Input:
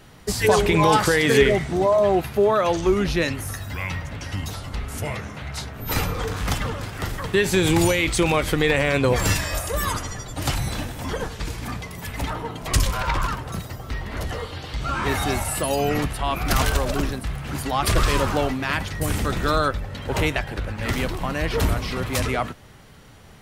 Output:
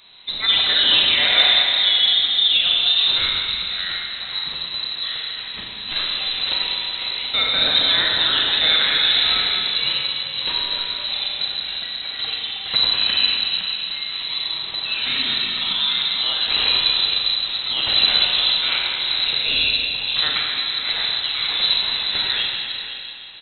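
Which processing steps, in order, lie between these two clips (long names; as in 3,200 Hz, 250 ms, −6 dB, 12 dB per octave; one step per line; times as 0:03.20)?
slap from a distant wall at 87 metres, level −10 dB
four-comb reverb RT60 2.4 s, combs from 33 ms, DRR −2 dB
voice inversion scrambler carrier 4,000 Hz
level −2.5 dB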